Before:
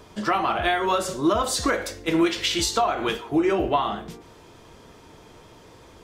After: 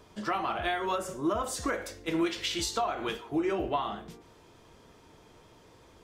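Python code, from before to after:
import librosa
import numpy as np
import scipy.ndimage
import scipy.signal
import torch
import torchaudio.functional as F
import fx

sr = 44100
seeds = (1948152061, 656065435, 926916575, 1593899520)

y = fx.peak_eq(x, sr, hz=4100.0, db=fx.line((0.95, -15.0), (1.88, -4.5)), octaves=0.64, at=(0.95, 1.88), fade=0.02)
y = y * librosa.db_to_amplitude(-8.0)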